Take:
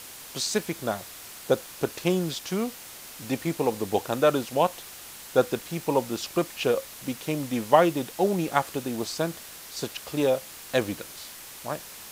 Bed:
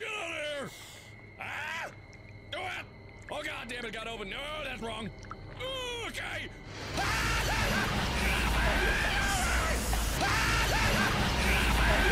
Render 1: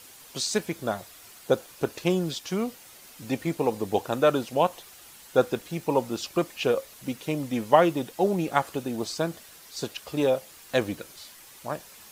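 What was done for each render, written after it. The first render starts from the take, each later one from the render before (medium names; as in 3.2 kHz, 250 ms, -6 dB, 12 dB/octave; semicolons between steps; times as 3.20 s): noise reduction 8 dB, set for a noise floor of -44 dBFS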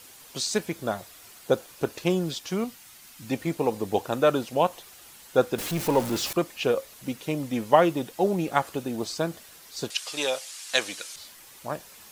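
2.64–3.31 s: peaking EQ 490 Hz -10.5 dB 1.1 oct; 5.58–6.33 s: jump at every zero crossing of -28.5 dBFS; 9.90–11.16 s: frequency weighting ITU-R 468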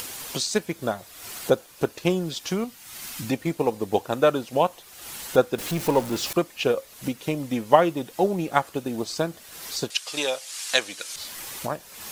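transient shaper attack +3 dB, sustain -2 dB; upward compressor, threshold -24 dBFS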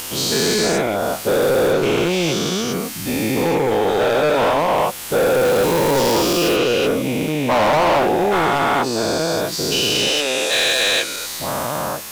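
every event in the spectrogram widened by 480 ms; hard clipper -13 dBFS, distortion -9 dB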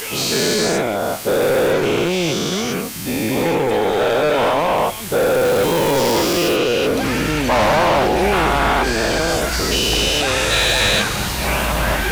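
add bed +6 dB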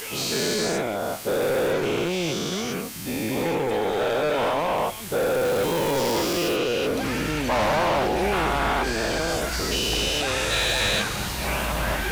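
trim -7 dB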